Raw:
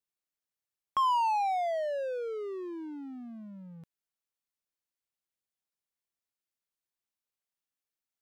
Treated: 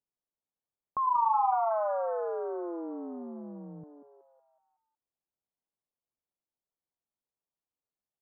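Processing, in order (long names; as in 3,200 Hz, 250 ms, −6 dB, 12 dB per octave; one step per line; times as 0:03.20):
low-pass filter 1,000 Hz 24 dB per octave
0:01.02–0:01.54: double-tracking delay 41 ms −4 dB
echo with shifted repeats 185 ms, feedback 49%, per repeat +120 Hz, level −8 dB
level +1.5 dB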